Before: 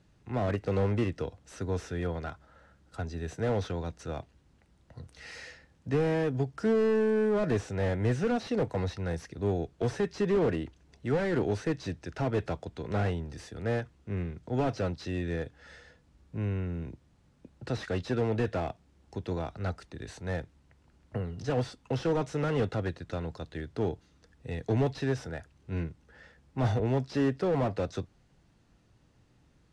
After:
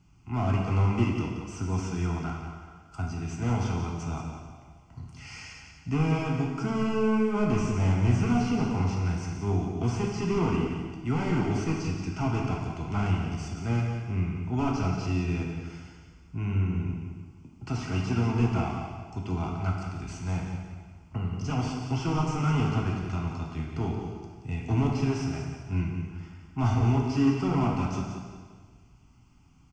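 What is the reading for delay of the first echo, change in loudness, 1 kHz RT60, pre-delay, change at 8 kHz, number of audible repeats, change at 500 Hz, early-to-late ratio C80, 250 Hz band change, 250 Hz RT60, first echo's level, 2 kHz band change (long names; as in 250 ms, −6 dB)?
178 ms, +3.0 dB, 1.5 s, 4 ms, +6.0 dB, 1, −4.5 dB, 2.5 dB, +4.5 dB, 1.5 s, −8.5 dB, +1.0 dB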